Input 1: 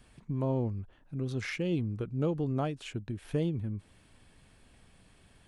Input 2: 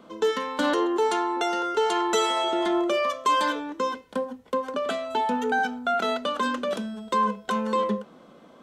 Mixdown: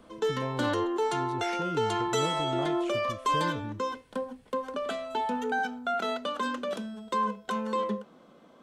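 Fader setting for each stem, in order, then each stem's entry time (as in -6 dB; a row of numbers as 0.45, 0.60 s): -4.5, -5.0 dB; 0.00, 0.00 s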